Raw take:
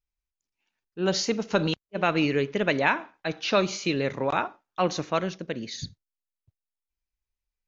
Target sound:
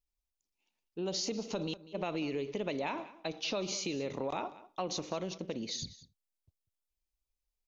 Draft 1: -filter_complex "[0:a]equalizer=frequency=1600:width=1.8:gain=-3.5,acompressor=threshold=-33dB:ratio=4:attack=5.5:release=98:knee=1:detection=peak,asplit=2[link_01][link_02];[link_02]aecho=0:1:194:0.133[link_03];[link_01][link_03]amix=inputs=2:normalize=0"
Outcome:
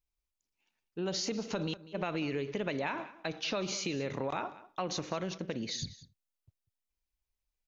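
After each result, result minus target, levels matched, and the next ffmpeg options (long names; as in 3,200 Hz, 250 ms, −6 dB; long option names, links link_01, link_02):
2,000 Hz band +3.0 dB; 125 Hz band +3.0 dB
-filter_complex "[0:a]equalizer=frequency=1600:width=1.8:gain=-14.5,acompressor=threshold=-33dB:ratio=4:attack=5.5:release=98:knee=1:detection=peak,asplit=2[link_01][link_02];[link_02]aecho=0:1:194:0.133[link_03];[link_01][link_03]amix=inputs=2:normalize=0"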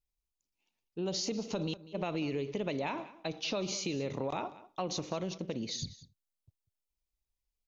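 125 Hz band +3.5 dB
-filter_complex "[0:a]equalizer=frequency=1600:width=1.8:gain=-14.5,acompressor=threshold=-33dB:ratio=4:attack=5.5:release=98:knee=1:detection=peak,equalizer=frequency=120:width=1.2:gain=-6.5,asplit=2[link_01][link_02];[link_02]aecho=0:1:194:0.133[link_03];[link_01][link_03]amix=inputs=2:normalize=0"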